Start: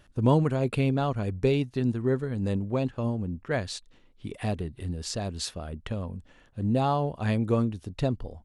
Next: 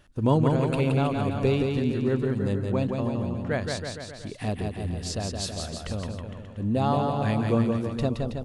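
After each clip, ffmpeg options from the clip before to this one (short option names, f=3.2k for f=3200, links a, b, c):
-af "bandreject=f=60:t=h:w=6,bandreject=f=120:t=h:w=6,aecho=1:1:170|323|460.7|584.6|696.2:0.631|0.398|0.251|0.158|0.1"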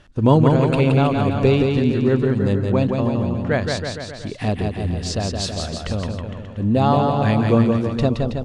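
-af "lowpass=6.8k,volume=7.5dB"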